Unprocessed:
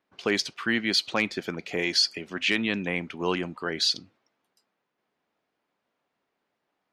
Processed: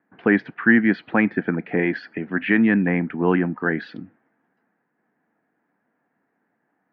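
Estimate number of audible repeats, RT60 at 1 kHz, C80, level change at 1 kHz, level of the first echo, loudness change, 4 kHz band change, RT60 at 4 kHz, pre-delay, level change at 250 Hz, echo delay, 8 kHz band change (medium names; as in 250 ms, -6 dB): no echo, no reverb, no reverb, +5.5 dB, no echo, +5.5 dB, -19.0 dB, no reverb, no reverb, +12.0 dB, no echo, under -35 dB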